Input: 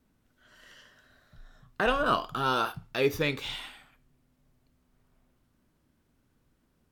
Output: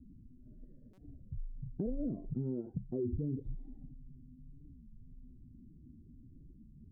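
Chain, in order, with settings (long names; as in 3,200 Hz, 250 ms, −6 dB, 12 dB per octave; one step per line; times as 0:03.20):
expanding power law on the bin magnitudes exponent 1.8
inverse Chebyshev low-pass filter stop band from 1,100 Hz, stop band 60 dB
brickwall limiter −33 dBFS, peak gain reduction 9 dB
downward compressor 2.5 to 1, threshold −54 dBFS, peak gain reduction 11.5 dB
buffer that repeats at 0:00.93, samples 256, times 8
wow of a warped record 33 1/3 rpm, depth 250 cents
level +15.5 dB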